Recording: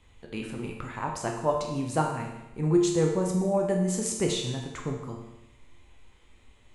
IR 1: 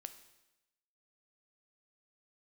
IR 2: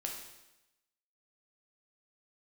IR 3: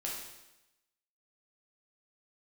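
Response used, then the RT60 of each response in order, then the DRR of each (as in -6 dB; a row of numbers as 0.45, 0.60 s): 2; 0.95, 0.95, 0.95 s; 9.5, 0.0, -4.0 dB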